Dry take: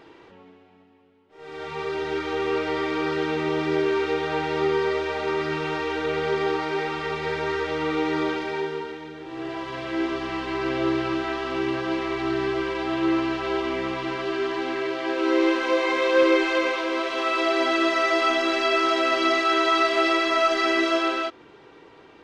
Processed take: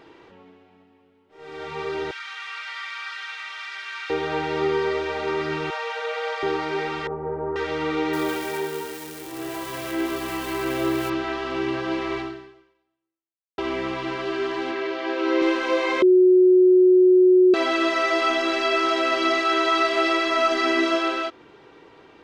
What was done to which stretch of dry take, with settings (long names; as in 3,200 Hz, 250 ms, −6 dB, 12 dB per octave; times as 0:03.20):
0:02.11–0:04.10: high-pass filter 1,300 Hz 24 dB per octave
0:05.70–0:06.43: linear-phase brick-wall high-pass 450 Hz
0:07.07–0:07.56: low-pass filter 1,000 Hz 24 dB per octave
0:08.13–0:11.10: spike at every zero crossing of −28.5 dBFS
0:12.18–0:13.58: fade out exponential
0:14.71–0:15.42: band-pass filter 200–6,000 Hz
0:16.02–0:17.54: beep over 367 Hz −11 dBFS
0:20.38–0:20.95: hollow resonant body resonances 250/910 Hz, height 8 dB